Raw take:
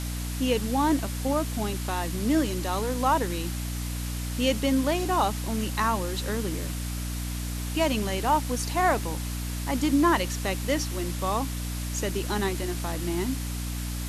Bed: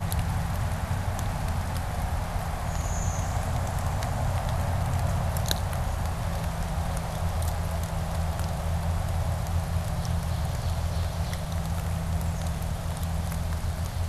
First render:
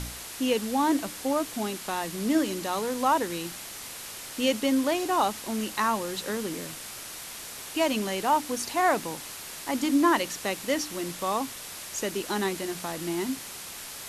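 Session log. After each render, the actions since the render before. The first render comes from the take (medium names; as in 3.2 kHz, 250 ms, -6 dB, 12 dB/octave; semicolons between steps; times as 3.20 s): de-hum 60 Hz, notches 5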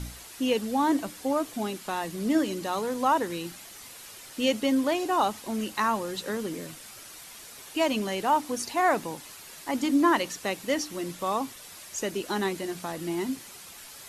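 noise reduction 8 dB, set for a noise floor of -41 dBFS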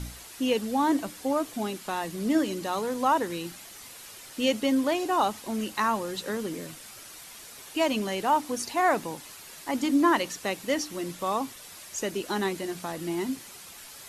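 no audible change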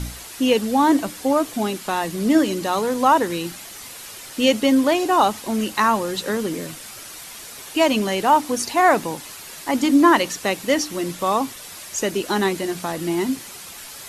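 trim +8 dB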